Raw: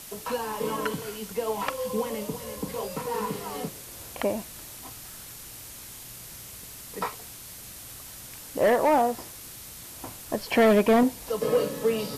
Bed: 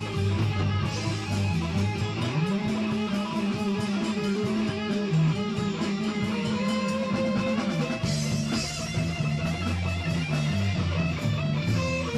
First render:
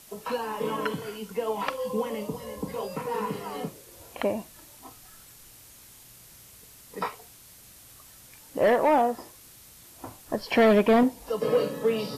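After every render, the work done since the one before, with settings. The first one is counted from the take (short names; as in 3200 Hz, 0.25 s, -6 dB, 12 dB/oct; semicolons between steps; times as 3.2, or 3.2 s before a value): noise print and reduce 8 dB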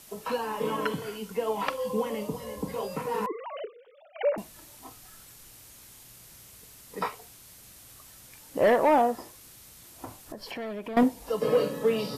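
3.26–4.38 sine-wave speech; 10.05–10.97 compressor, threshold -36 dBFS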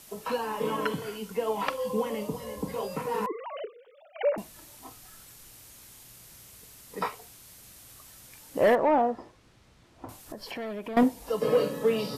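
8.75–10.09 tape spacing loss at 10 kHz 25 dB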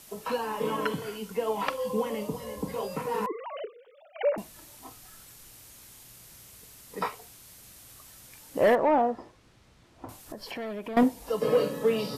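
nothing audible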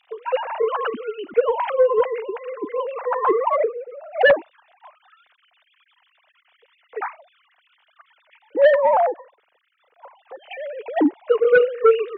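sine-wave speech; sine folder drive 8 dB, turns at -8 dBFS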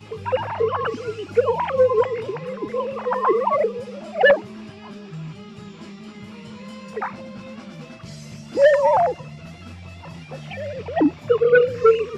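add bed -11 dB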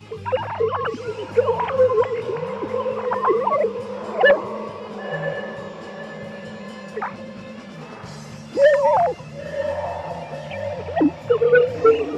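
diffused feedback echo 0.996 s, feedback 44%, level -10 dB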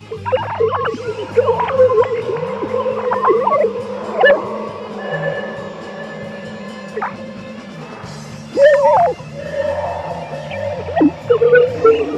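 gain +5.5 dB; limiter -3 dBFS, peak gain reduction 2.5 dB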